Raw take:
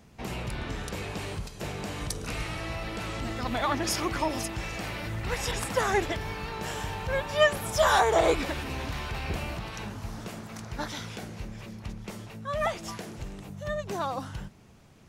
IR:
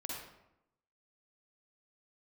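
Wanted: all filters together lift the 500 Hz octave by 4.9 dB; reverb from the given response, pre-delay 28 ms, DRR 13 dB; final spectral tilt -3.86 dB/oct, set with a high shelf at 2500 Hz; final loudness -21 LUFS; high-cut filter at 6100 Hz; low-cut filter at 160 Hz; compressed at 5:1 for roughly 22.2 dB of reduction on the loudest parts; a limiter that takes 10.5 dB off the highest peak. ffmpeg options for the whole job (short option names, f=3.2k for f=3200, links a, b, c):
-filter_complex "[0:a]highpass=160,lowpass=6.1k,equalizer=f=500:t=o:g=6,highshelf=f=2.5k:g=6,acompressor=threshold=-40dB:ratio=5,alimiter=level_in=11dB:limit=-24dB:level=0:latency=1,volume=-11dB,asplit=2[a][b];[1:a]atrim=start_sample=2205,adelay=28[c];[b][c]afir=irnorm=-1:irlink=0,volume=-13dB[d];[a][d]amix=inputs=2:normalize=0,volume=23dB"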